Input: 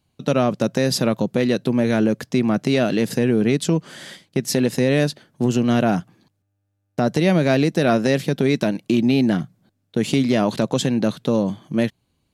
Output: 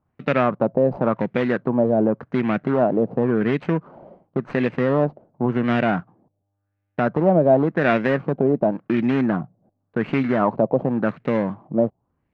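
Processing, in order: median filter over 25 samples; tilt shelf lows -3.5 dB, about 770 Hz; LFO low-pass sine 0.91 Hz 640–2200 Hz

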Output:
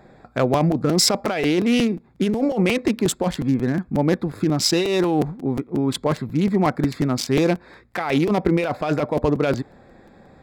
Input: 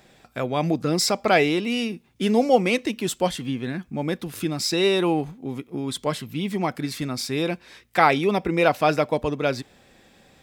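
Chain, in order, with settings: local Wiener filter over 15 samples; compressor with a negative ratio -24 dBFS, ratio -1; crackling interface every 0.18 s, samples 256, repeat, from 0.53 s; trim +5.5 dB

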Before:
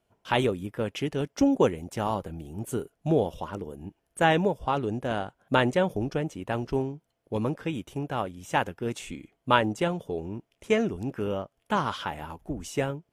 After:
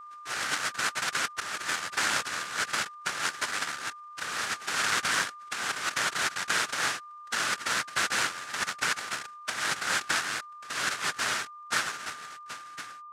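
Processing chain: fade out at the end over 3.00 s; noise-vocoded speech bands 1; compressor with a negative ratio -30 dBFS, ratio -1; peaking EQ 1.5 kHz +13.5 dB 0.97 oct; whistle 1.2 kHz -39 dBFS; trim -4 dB

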